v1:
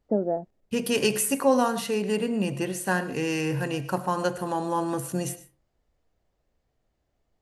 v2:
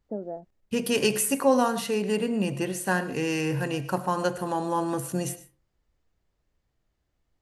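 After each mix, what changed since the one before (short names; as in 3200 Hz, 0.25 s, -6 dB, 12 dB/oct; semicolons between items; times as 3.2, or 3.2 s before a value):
first voice -9.0 dB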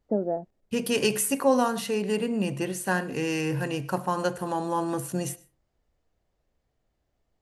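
first voice +7.5 dB; second voice: send -7.0 dB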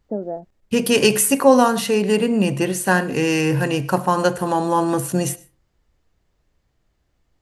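second voice +9.0 dB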